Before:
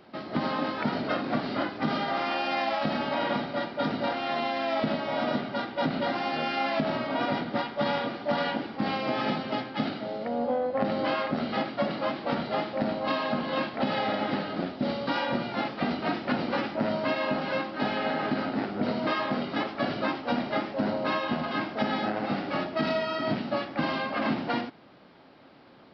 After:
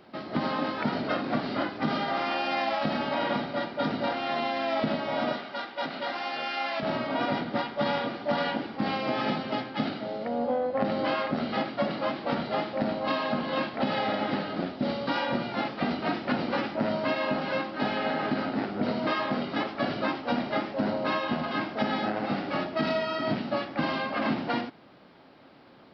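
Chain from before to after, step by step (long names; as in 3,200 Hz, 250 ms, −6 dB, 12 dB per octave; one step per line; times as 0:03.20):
0:05.33–0:06.83: high-pass filter 810 Hz 6 dB per octave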